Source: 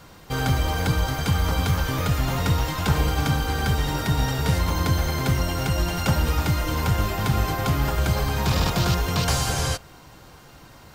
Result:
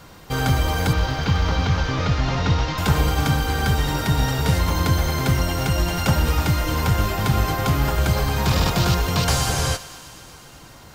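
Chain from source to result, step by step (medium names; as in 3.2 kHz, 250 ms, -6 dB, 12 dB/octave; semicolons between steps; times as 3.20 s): 0.93–2.78 s: CVSD coder 32 kbps; thinning echo 124 ms, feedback 81%, high-pass 670 Hz, level -17 dB; trim +2.5 dB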